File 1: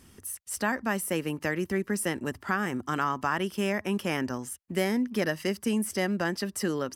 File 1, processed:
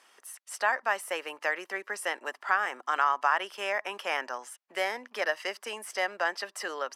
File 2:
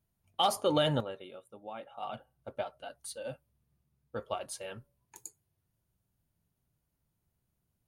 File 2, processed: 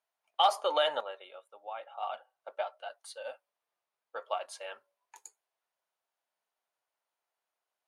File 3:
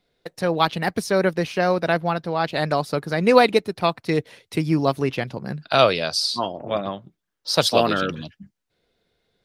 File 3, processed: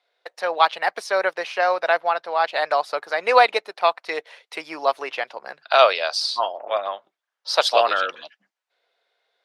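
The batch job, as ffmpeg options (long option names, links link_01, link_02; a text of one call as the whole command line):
ffmpeg -i in.wav -af "highpass=frequency=640:width=0.5412,highpass=frequency=640:width=1.3066,aemphasis=mode=reproduction:type=bsi,volume=4dB" out.wav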